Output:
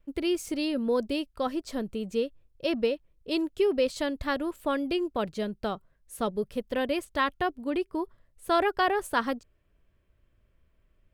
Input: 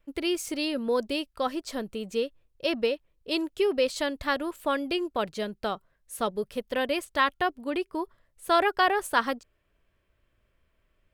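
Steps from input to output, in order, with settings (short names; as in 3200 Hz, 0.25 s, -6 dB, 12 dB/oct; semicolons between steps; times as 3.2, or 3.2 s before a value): low shelf 400 Hz +9 dB; gain -4 dB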